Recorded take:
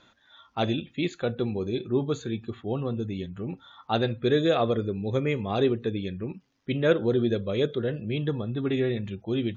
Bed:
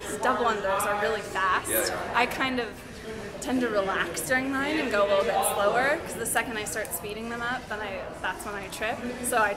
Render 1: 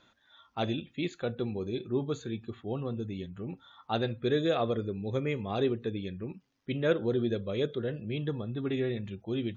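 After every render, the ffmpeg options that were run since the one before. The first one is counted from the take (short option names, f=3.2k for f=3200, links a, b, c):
-af "volume=-5dB"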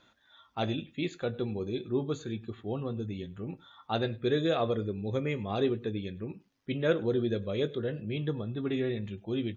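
-filter_complex "[0:a]asplit=2[a][b];[b]adelay=19,volume=-13.5dB[c];[a][c]amix=inputs=2:normalize=0,aecho=1:1:101:0.0708"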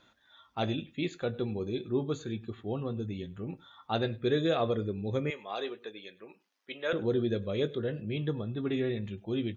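-filter_complex "[0:a]asettb=1/sr,asplit=3[a][b][c];[a]atrim=end=5.304[d];[b]atrim=start=5.3:end=6.93,asetpts=PTS-STARTPTS,afade=t=in:d=0.004:c=qsin,afade=t=out:st=1.626:d=0.004:c=qsin,highpass=640[e];[c]atrim=start=6.926[f];[d][e]acrossfade=d=0.004:c1=hsin:c2=qsin[g];[g][f]acrossfade=d=0.004:c1=qsin:c2=hsin"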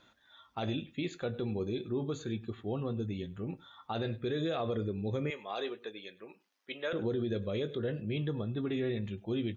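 -af "alimiter=level_in=1.5dB:limit=-24dB:level=0:latency=1:release=48,volume=-1.5dB"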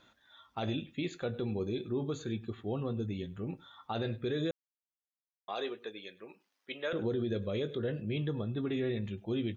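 -filter_complex "[0:a]asplit=3[a][b][c];[a]atrim=end=4.51,asetpts=PTS-STARTPTS,afade=t=out:st=4.506:d=0.004:c=hsin[d];[b]atrim=start=4.51:end=5.48,asetpts=PTS-STARTPTS,volume=0[e];[c]atrim=start=5.48,asetpts=PTS-STARTPTS,afade=t=in:d=0.004:c=hsin[f];[d][e][f]concat=n=3:v=0:a=1"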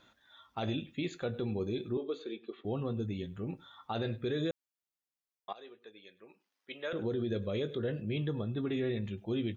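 -filter_complex "[0:a]asettb=1/sr,asplit=3[a][b][c];[a]atrim=end=1.974[d];[b]atrim=start=1.97:end=2.65,asetpts=PTS-STARTPTS,afade=t=in:d=0.004:c=qsin,afade=t=out:st=0.676:d=0.004:c=qsin,highpass=f=310:w=0.5412,highpass=f=310:w=1.3066,equalizer=f=440:t=q:w=4:g=3,equalizer=f=850:t=q:w=4:g=-9,equalizer=f=1.6k:t=q:w=4:g=-9,lowpass=f=4.3k:w=0.5412,lowpass=f=4.3k:w=1.3066[e];[c]atrim=start=2.646[f];[d][e]acrossfade=d=0.004:c1=hsin:c2=qsin[g];[g][f]acrossfade=d=0.004:c1=qsin:c2=hsin,asplit=2[h][i];[h]atrim=end=5.53,asetpts=PTS-STARTPTS,afade=t=out:st=5.526:d=0.004:c=hsin:silence=0.133352[j];[i]atrim=start=5.53,asetpts=PTS-STARTPTS,afade=t=in:d=1.84:silence=0.133352[k];[j][k]concat=n=2:v=0:a=1"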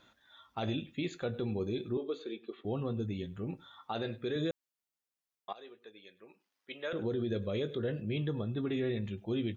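-filter_complex "[0:a]asettb=1/sr,asplit=3[a][b][c];[a]atrim=end=3.794[d];[b]atrim=start=3.79:end=4.36,asetpts=PTS-STARTPTS,afade=t=in:d=0.004:c=qsin,afade=t=out:st=0.566:d=0.004:c=qsin,highpass=f=200:p=1[e];[c]atrim=start=4.356[f];[d][e]acrossfade=d=0.004:c1=hsin:c2=qsin[g];[g][f]acrossfade=d=0.004:c1=qsin:c2=hsin"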